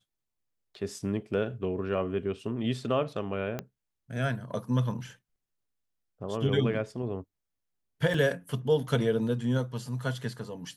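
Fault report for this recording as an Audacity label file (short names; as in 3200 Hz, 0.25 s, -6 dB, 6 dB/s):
3.590000	3.590000	pop -19 dBFS
8.140000	8.140000	gap 2.3 ms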